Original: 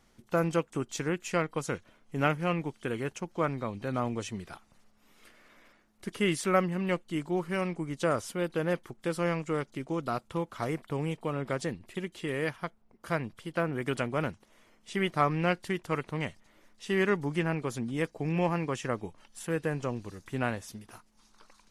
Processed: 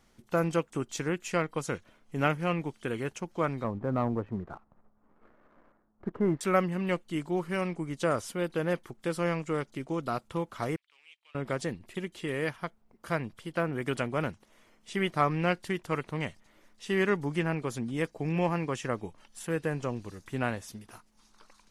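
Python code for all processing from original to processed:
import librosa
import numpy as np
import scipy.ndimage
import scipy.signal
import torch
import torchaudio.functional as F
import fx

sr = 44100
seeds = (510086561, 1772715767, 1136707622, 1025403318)

y = fx.chain(x, sr, fx.lowpass(hz=1300.0, slope=24),
    fx.leveller(passes=1), at=(3.64, 6.41))
y = fx.chain(y, sr, fx.law_mismatch(coded='A'),
    fx.ladder_bandpass(hz=3300.0, resonance_pct=40), at=(10.76, 11.35))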